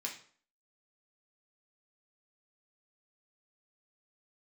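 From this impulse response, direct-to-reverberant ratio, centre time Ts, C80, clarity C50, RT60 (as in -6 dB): -1.5 dB, 20 ms, 13.0 dB, 8.0 dB, 0.50 s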